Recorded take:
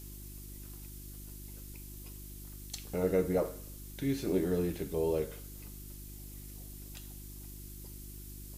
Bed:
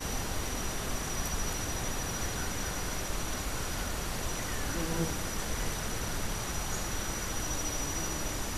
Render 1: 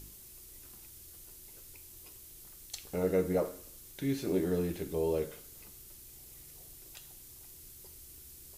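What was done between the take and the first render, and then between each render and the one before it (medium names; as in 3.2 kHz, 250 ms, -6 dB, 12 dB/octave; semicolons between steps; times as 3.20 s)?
de-hum 50 Hz, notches 7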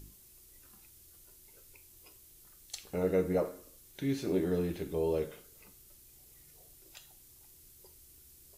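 noise print and reduce 6 dB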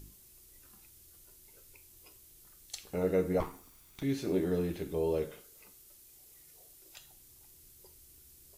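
3.40–4.03 s: comb filter that takes the minimum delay 0.87 ms; 5.40–6.96 s: tone controls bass -7 dB, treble +1 dB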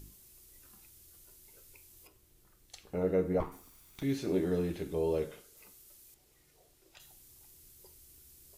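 2.07–3.52 s: treble shelf 2.9 kHz -11.5 dB; 4.18–5.57 s: Bessel low-pass 12 kHz; 6.14–7.00 s: low-pass 2.6 kHz 6 dB/octave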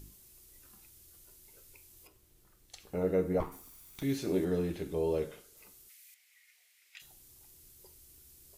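2.80–4.45 s: treble shelf 6.1 kHz +6 dB; 5.89–7.02 s: resonant high-pass 2.1 kHz, resonance Q 4.5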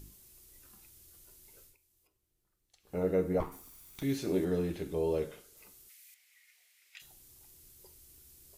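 1.63–2.97 s: dip -15.5 dB, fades 0.14 s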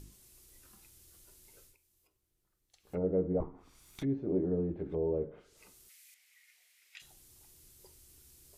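low-pass that closes with the level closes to 600 Hz, closed at -31.5 dBFS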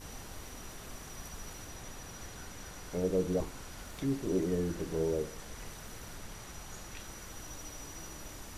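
add bed -12 dB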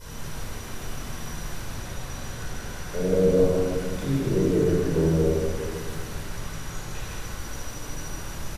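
delay 160 ms -3.5 dB; simulated room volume 1800 m³, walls mixed, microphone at 4.9 m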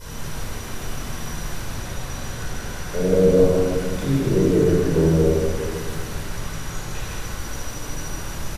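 trim +4.5 dB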